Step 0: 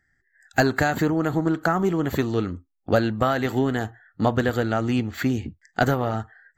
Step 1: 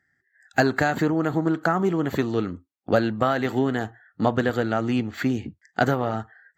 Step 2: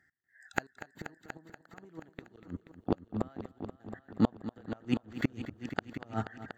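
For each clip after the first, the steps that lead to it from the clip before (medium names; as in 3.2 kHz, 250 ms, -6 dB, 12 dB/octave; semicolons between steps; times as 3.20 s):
high-pass 120 Hz; treble shelf 7.7 kHz -9 dB
inverted gate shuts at -14 dBFS, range -34 dB; trance gate "x..xxxx.x.xx.xx" 158 bpm -24 dB; multi-head delay 240 ms, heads all three, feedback 43%, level -14 dB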